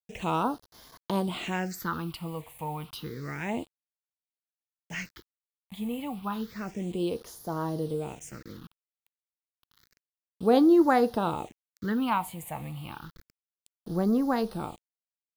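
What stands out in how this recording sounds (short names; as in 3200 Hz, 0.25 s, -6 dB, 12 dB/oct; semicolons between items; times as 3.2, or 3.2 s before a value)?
a quantiser's noise floor 8-bit, dither none; phasing stages 6, 0.3 Hz, lowest notch 380–2500 Hz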